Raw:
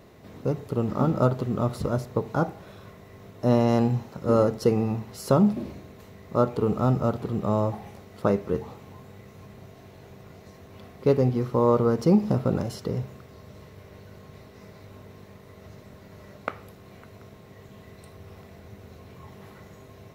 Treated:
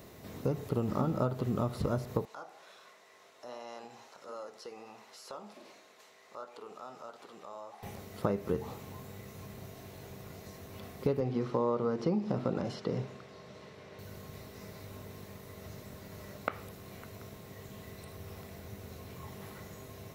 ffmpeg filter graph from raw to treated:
-filter_complex "[0:a]asettb=1/sr,asplit=3[s0][s1][s2];[s0]atrim=end=2.254[s3];[s1]atrim=start=2.25:end=7.83,asetpts=PTS-STARTPTS,afade=t=in:d=0.004:c=qsin,afade=t=out:st=5.576:d=0.004:c=qsin,highpass=710,lowpass=7500,flanger=delay=3.3:depth=9.6:regen=-62:speed=1.4:shape=sinusoidal,acompressor=threshold=0.00355:ratio=2:attack=3.2:release=140:knee=1:detection=peak[s4];[s2]atrim=start=7.826[s5];[s3][s4]acrossfade=d=0.004:c1=hsin:c2=qsin[s6];[s6][s5]acrossfade=d=0.004:c1=qsin:c2=hsin,asettb=1/sr,asplit=3[s7][s8][s9];[s7]atrim=end=11.204[s10];[s8]atrim=start=11.2:end=13.99,asetpts=PTS-STARTPTS,afade=t=in:d=0.004:c=qsin,afade=t=out:st=2.786:d=0.004:c=qsin,highpass=160,lowpass=4600,bandreject=f=50:t=h:w=6,bandreject=f=100:t=h:w=6,bandreject=f=150:t=h:w=6,bandreject=f=200:t=h:w=6,bandreject=f=250:t=h:w=6,bandreject=f=300:t=h:w=6,bandreject=f=350:t=h:w=6,bandreject=f=400:t=h:w=6,bandreject=f=450:t=h:w=6[s11];[s9]atrim=start=13.986[s12];[s10][s11]acrossfade=d=0.004:c1=hsin:c2=qsin[s13];[s13][s12]acrossfade=d=0.004:c1=qsin:c2=hsin,acrossover=split=4000[s14][s15];[s15]acompressor=threshold=0.00112:ratio=4:attack=1:release=60[s16];[s14][s16]amix=inputs=2:normalize=0,highshelf=f=5500:g=11.5,acompressor=threshold=0.0501:ratio=6,volume=0.891"

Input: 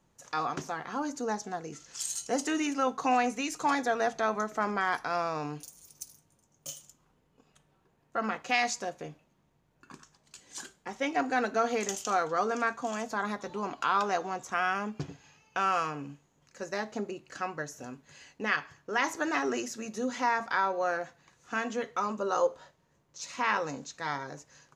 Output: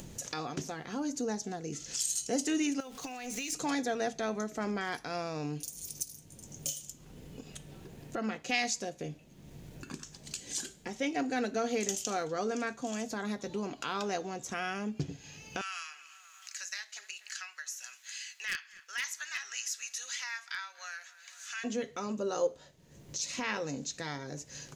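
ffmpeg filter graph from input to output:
-filter_complex "[0:a]asettb=1/sr,asplit=3[s0][s1][s2];[s0]atrim=end=2.804[s3];[s1]atrim=start=2.8:end=3.53,asetpts=PTS-STARTPTS,afade=t=in:d=0.004:c=qsin,afade=t=out:st=0.726:d=0.004:c=qsin,aeval=exprs='val(0)+0.5*0.00708*sgn(val(0))':c=same,equalizer=f=240:w=0.34:g=-9,acompressor=threshold=0.0141:ratio=6:attack=3.2:release=140:knee=1:detection=peak[s4];[s2]atrim=start=3.526[s5];[s3][s4]acrossfade=d=0.004:c1=hsin:c2=qsin[s6];[s6][s5]acrossfade=d=0.004:c1=qsin:c2=hsin,asettb=1/sr,asplit=3[s7][s8][s9];[s7]atrim=end=15.614[s10];[s8]atrim=start=15.61:end=21.64,asetpts=PTS-STARTPTS,afade=t=in:d=0.004:c=qsin,afade=t=out:st=6.026:d=0.004:c=qsin,highpass=f=1400:w=0.5412,highpass=f=1400:w=1.3066,aeval=exprs='0.0944*(abs(mod(val(0)/0.0944+3,4)-2)-1)':c=same,asplit=2[s11][s12];[s12]adelay=241,lowpass=f=2500:p=1,volume=0.0794,asplit=2[s13][s14];[s14]adelay=241,lowpass=f=2500:p=1,volume=0.43,asplit=2[s15][s16];[s16]adelay=241,lowpass=f=2500:p=1,volume=0.43[s17];[s11][s13][s15][s17]amix=inputs=4:normalize=0,atrim=end_sample=265923[s18];[s9]atrim=start=21.636[s19];[s10][s18]acrossfade=d=0.004:c1=hsin:c2=qsin[s20];[s20][s19]acrossfade=d=0.004:c1=qsin:c2=hsin,acompressor=mode=upward:threshold=0.0316:ratio=2.5,equalizer=f=1100:t=o:w=1.5:g=-14,volume=1.26"

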